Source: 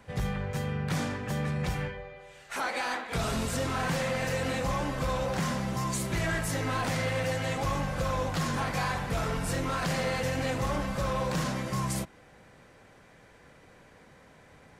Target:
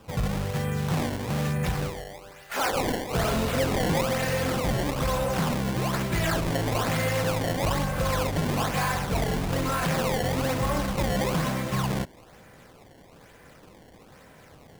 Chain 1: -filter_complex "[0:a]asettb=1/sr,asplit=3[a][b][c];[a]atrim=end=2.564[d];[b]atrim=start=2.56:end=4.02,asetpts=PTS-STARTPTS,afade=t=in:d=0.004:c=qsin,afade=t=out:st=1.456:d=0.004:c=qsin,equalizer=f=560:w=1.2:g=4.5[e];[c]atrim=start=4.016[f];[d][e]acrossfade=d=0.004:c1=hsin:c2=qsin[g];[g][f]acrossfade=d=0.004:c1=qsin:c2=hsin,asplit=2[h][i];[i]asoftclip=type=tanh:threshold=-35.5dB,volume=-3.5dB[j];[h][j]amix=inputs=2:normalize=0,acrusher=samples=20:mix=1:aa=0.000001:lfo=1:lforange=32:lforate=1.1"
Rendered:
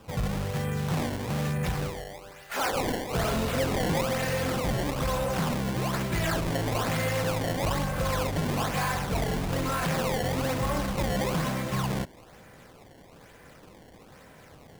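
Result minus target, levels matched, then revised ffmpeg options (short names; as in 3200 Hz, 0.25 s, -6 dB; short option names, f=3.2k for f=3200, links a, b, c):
soft clip: distortion +13 dB
-filter_complex "[0:a]asettb=1/sr,asplit=3[a][b][c];[a]atrim=end=2.564[d];[b]atrim=start=2.56:end=4.02,asetpts=PTS-STARTPTS,afade=t=in:d=0.004:c=qsin,afade=t=out:st=1.456:d=0.004:c=qsin,equalizer=f=560:w=1.2:g=4.5[e];[c]atrim=start=4.016[f];[d][e]acrossfade=d=0.004:c1=hsin:c2=qsin[g];[g][f]acrossfade=d=0.004:c1=qsin:c2=hsin,asplit=2[h][i];[i]asoftclip=type=tanh:threshold=-23.5dB,volume=-3.5dB[j];[h][j]amix=inputs=2:normalize=0,acrusher=samples=20:mix=1:aa=0.000001:lfo=1:lforange=32:lforate=1.1"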